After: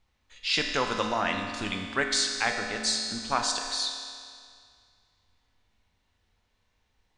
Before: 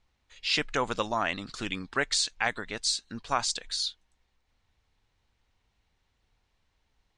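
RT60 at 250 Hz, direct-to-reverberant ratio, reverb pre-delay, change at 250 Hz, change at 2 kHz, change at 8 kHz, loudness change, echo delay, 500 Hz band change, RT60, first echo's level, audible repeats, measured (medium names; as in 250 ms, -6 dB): 2.2 s, 2.5 dB, 11 ms, +3.0 dB, +2.0 dB, +2.0 dB, +2.0 dB, no echo, +1.5 dB, 2.2 s, no echo, no echo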